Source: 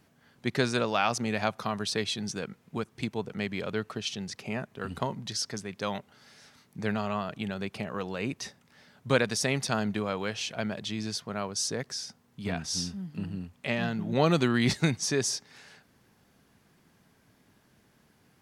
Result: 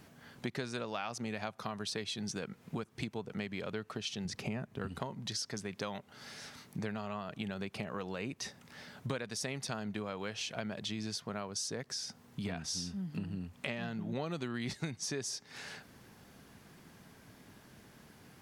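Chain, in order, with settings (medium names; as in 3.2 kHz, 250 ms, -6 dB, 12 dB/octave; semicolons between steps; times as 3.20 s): 4.25–4.88 s: bass shelf 280 Hz +9 dB; compression 6:1, threshold -43 dBFS, peak gain reduction 22.5 dB; trim +6.5 dB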